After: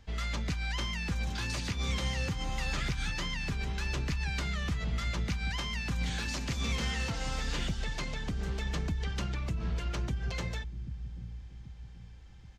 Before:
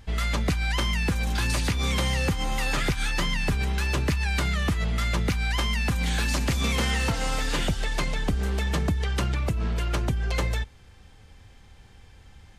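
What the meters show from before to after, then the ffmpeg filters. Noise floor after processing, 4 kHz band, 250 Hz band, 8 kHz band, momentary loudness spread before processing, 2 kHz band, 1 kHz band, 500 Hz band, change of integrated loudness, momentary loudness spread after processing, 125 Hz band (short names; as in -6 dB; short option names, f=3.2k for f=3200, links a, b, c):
-49 dBFS, -7.0 dB, -8.0 dB, -8.5 dB, 3 LU, -8.0 dB, -9.5 dB, -10.5 dB, -8.0 dB, 10 LU, -7.5 dB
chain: -filter_complex "[0:a]highshelf=f=8k:t=q:w=1.5:g=-7.5,acrossover=split=240|1700[a][b][c];[a]aecho=1:1:782|1564|2346|3128|3910:0.531|0.228|0.0982|0.0422|0.0181[d];[b]volume=31dB,asoftclip=hard,volume=-31dB[e];[d][e][c]amix=inputs=3:normalize=0,volume=-8dB"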